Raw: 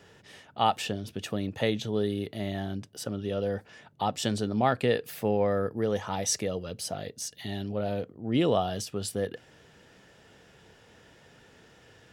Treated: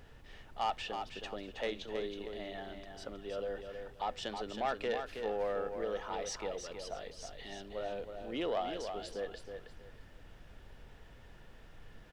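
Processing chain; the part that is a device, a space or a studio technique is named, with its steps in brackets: aircraft cabin announcement (BPF 430–3900 Hz; soft clip -20.5 dBFS, distortion -15 dB; brown noise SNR 12 dB); feedback echo 0.32 s, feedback 25%, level -7 dB; gain -5.5 dB

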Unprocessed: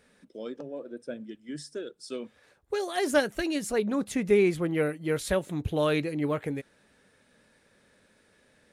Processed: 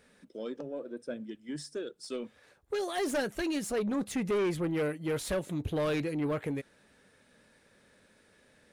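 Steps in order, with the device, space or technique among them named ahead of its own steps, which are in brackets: saturation between pre-emphasis and de-emphasis (high shelf 3500 Hz +10 dB; soft clip -25.5 dBFS, distortion -9 dB; high shelf 3500 Hz -10 dB)

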